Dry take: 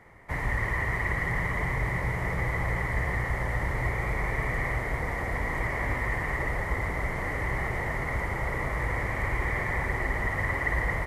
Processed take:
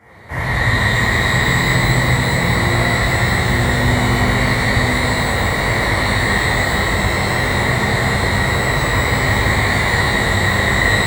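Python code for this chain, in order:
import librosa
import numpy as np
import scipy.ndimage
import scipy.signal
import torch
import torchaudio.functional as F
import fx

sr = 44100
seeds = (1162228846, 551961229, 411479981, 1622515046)

y = scipy.signal.sosfilt(scipy.signal.butter(2, 58.0, 'highpass', fs=sr, output='sos'), x)
y = fx.rev_shimmer(y, sr, seeds[0], rt60_s=1.9, semitones=12, shimmer_db=-8, drr_db=-11.0)
y = y * librosa.db_to_amplitude(2.0)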